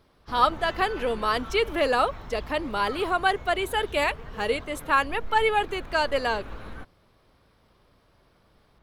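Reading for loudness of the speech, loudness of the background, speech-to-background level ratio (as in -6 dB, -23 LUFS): -25.5 LUFS, -41.5 LUFS, 16.0 dB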